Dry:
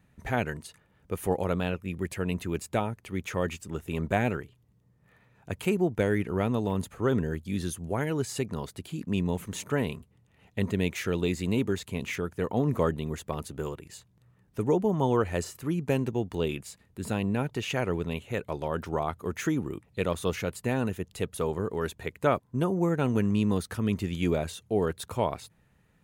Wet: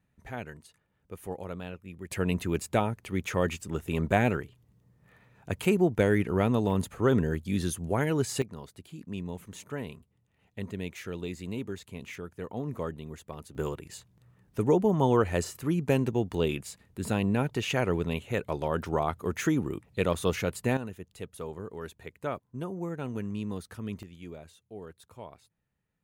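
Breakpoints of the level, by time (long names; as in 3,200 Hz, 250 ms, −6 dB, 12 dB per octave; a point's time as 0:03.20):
−10 dB
from 0:02.11 +2 dB
from 0:08.42 −8.5 dB
from 0:13.55 +1.5 dB
from 0:20.77 −9 dB
from 0:24.03 −17 dB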